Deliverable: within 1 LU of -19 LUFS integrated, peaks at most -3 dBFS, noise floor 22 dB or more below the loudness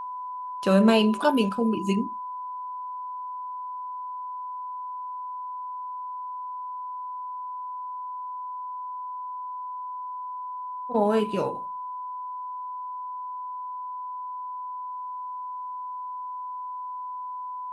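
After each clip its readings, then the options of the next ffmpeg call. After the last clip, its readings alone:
steady tone 1 kHz; tone level -32 dBFS; loudness -30.0 LUFS; peak level -7.5 dBFS; loudness target -19.0 LUFS
-> -af "bandreject=f=1000:w=30"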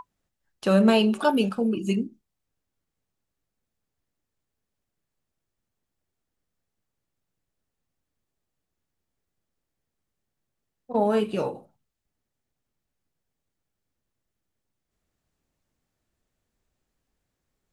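steady tone not found; loudness -23.5 LUFS; peak level -8.5 dBFS; loudness target -19.0 LUFS
-> -af "volume=1.68"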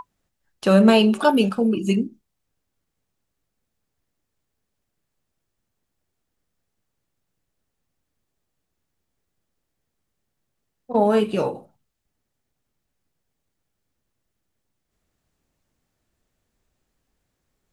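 loudness -19.0 LUFS; peak level -4.0 dBFS; noise floor -79 dBFS

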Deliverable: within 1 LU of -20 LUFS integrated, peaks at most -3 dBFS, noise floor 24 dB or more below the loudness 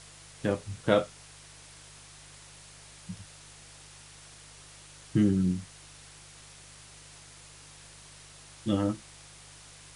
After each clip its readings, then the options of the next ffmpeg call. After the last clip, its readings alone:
hum 50 Hz; highest harmonic 150 Hz; hum level -57 dBFS; noise floor -52 dBFS; noise floor target -54 dBFS; loudness -30.0 LUFS; peak level -7.5 dBFS; loudness target -20.0 LUFS
-> -af "bandreject=f=50:t=h:w=4,bandreject=f=100:t=h:w=4,bandreject=f=150:t=h:w=4"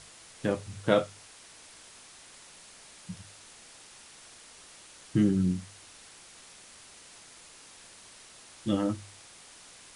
hum not found; noise floor -53 dBFS; noise floor target -54 dBFS
-> -af "afftdn=nr=6:nf=-53"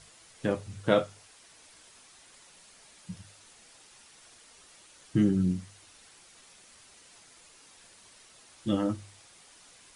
noise floor -57 dBFS; loudness -29.5 LUFS; peak level -7.5 dBFS; loudness target -20.0 LUFS
-> -af "volume=2.99,alimiter=limit=0.708:level=0:latency=1"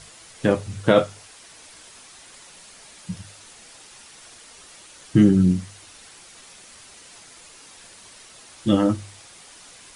loudness -20.5 LUFS; peak level -3.0 dBFS; noise floor -47 dBFS

